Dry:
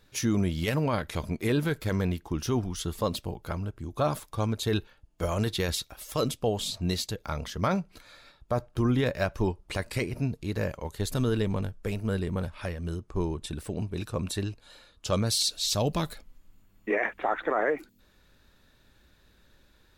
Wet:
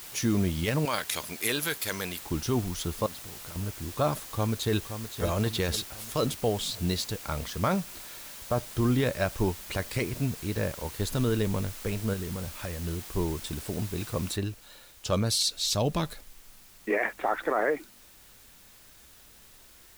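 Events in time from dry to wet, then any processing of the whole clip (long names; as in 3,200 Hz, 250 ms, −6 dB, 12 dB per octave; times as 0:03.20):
0:00.85–0:02.22: spectral tilt +4.5 dB per octave
0:03.06–0:03.56: downward compressor, threshold −42 dBFS
0:04.22–0:05.23: delay throw 520 ms, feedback 50%, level −9.5 dB
0:12.13–0:12.85: downward compressor, threshold −30 dBFS
0:14.36: noise floor change −44 dB −55 dB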